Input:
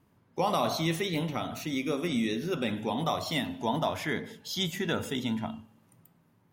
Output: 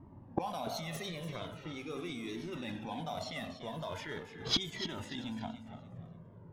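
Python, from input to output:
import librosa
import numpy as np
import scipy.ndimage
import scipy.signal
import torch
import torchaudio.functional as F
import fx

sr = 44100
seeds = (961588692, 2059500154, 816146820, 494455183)

p1 = fx.law_mismatch(x, sr, coded='A')
p2 = fx.env_lowpass(p1, sr, base_hz=710.0, full_db=-26.5)
p3 = fx.over_compress(p2, sr, threshold_db=-35.0, ratio=-0.5)
p4 = p2 + F.gain(torch.from_numpy(p3), 0.0).numpy()
p5 = fx.gate_flip(p4, sr, shuts_db=-29.0, range_db=-26)
p6 = p5 + fx.echo_feedback(p5, sr, ms=291, feedback_pct=30, wet_db=-11, dry=0)
p7 = fx.comb_cascade(p6, sr, direction='falling', hz=0.41)
y = F.gain(torch.from_numpy(p7), 18.0).numpy()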